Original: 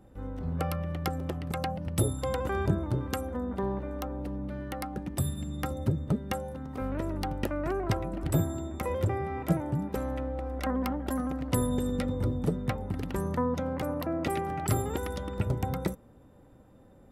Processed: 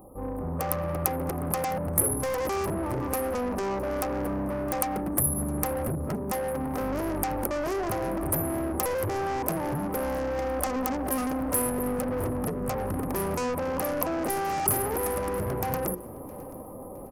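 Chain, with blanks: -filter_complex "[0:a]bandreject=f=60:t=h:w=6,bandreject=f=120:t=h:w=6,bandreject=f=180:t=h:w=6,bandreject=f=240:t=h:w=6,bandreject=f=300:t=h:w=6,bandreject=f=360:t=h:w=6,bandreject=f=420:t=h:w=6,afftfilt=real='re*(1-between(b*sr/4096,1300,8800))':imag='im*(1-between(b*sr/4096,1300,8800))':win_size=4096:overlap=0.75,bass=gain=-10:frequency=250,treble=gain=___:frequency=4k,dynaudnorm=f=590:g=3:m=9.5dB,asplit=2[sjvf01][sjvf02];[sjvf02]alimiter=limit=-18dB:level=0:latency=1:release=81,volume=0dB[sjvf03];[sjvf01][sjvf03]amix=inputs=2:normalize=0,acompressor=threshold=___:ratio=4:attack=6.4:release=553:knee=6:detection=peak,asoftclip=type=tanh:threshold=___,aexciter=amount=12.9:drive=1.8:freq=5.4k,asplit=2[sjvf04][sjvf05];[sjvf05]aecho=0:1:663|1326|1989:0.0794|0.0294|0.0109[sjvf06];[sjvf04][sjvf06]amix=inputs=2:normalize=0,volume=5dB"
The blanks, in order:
-14, -24dB, -31.5dB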